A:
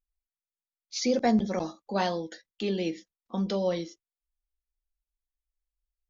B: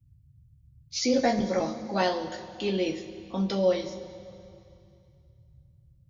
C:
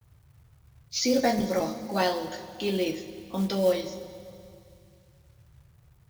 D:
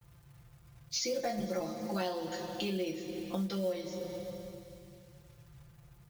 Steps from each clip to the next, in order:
band noise 39–140 Hz -60 dBFS; two-slope reverb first 0.21 s, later 2.6 s, from -18 dB, DRR 0 dB
companded quantiser 6-bit; high shelf 6400 Hz +4.5 dB
comb 5.8 ms, depth 87%; compressor 4:1, threshold -34 dBFS, peak gain reduction 16 dB

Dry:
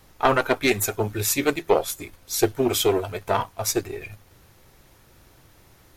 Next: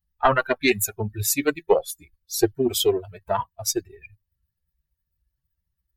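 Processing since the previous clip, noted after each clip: per-bin expansion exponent 2; gain +3.5 dB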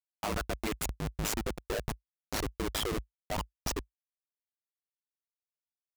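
Schmitt trigger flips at -24.5 dBFS; ring modulator 53 Hz; gain -3.5 dB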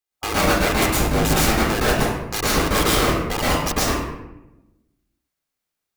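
spectral limiter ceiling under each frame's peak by 12 dB; reverb RT60 1.0 s, pre-delay 0.111 s, DRR -7.5 dB; gain +6 dB

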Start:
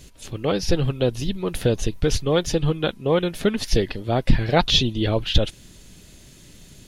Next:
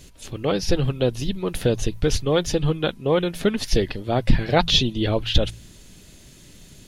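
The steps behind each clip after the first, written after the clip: de-hum 55.97 Hz, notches 3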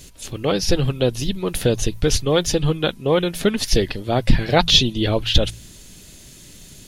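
high shelf 4200 Hz +6.5 dB; gain +2 dB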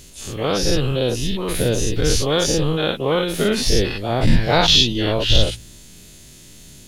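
spectral dilation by 0.12 s; gain -5 dB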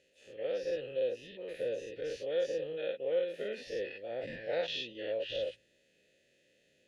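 vowel filter e; gain -7.5 dB

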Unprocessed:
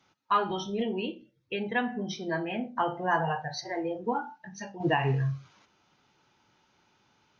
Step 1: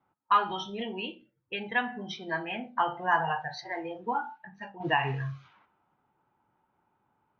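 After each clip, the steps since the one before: low-pass opened by the level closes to 740 Hz, open at -28 dBFS; band shelf 1700 Hz +8.5 dB 2.6 oct; gain -6 dB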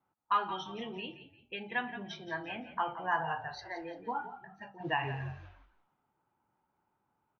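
frequency-shifting echo 0.172 s, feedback 33%, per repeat -45 Hz, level -12.5 dB; gain -6 dB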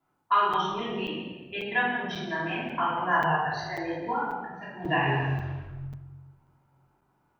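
shoebox room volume 760 m³, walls mixed, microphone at 3.1 m; crackling interface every 0.54 s, samples 256, zero, from 0.53; gain +1.5 dB

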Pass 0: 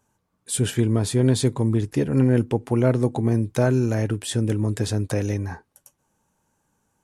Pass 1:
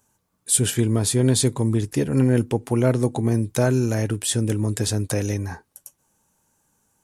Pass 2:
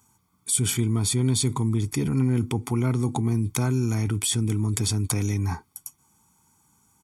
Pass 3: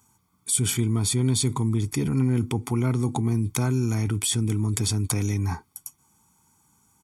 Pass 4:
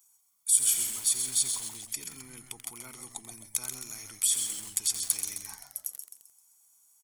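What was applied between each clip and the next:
high shelf 4900 Hz +10.5 dB
HPF 55 Hz; comb 0.9 ms, depth 87%; in parallel at 0 dB: negative-ratio compressor -25 dBFS, ratio -1; on the sum: gain -9 dB
nothing audible
differentiator; on a send: frequency-shifting echo 0.131 s, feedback 41%, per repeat -120 Hz, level -7 dB; on the sum: lo-fi delay 87 ms, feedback 80%, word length 6-bit, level -9.5 dB

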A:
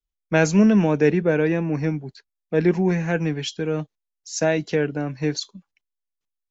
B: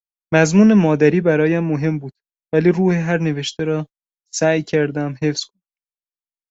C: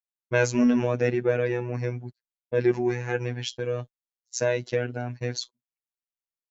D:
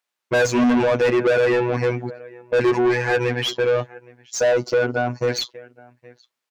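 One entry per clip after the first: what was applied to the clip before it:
gate -33 dBFS, range -34 dB; gain +4.5 dB
robotiser 122 Hz; gain -6 dB
outdoor echo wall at 140 m, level -28 dB; spectral gain 4.39–5.28, 1500–4200 Hz -12 dB; overdrive pedal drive 30 dB, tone 2600 Hz, clips at -5.5 dBFS; gain -3.5 dB

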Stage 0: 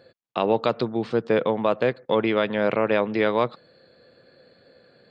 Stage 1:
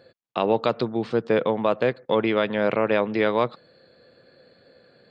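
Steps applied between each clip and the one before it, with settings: nothing audible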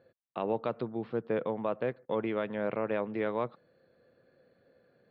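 air absorption 400 m; gain -9 dB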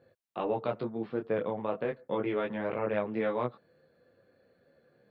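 detuned doubles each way 12 cents; gain +4.5 dB

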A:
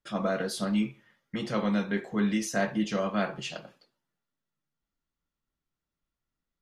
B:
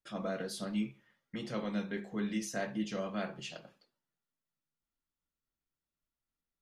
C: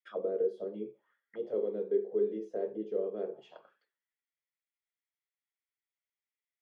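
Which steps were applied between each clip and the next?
notches 50/100/150/200 Hz; dynamic EQ 1100 Hz, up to -4 dB, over -44 dBFS, Q 1; gain -6.5 dB
small resonant body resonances 420/3300 Hz, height 12 dB, ringing for 20 ms; auto-wah 430–2100 Hz, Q 5.4, down, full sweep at -31 dBFS; gain +5.5 dB

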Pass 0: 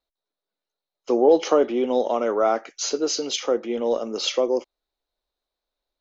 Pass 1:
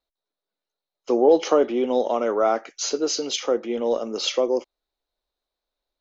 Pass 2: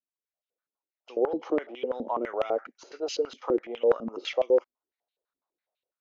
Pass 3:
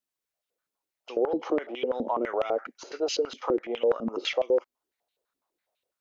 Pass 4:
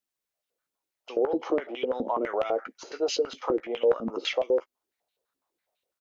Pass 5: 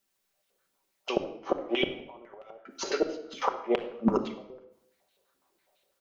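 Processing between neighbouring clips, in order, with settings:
nothing audible
AGC gain up to 12 dB; stepped band-pass 12 Hz 240–2800 Hz; gain -4.5 dB
in parallel at +0.5 dB: limiter -22.5 dBFS, peak gain reduction 10.5 dB; on the sum: compressor 1.5:1, threshold -28 dBFS, peak gain reduction 5.5 dB
doubler 15 ms -11.5 dB
flipped gate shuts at -21 dBFS, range -32 dB; reverb RT60 0.75 s, pre-delay 5 ms, DRR 4 dB; gain +8.5 dB

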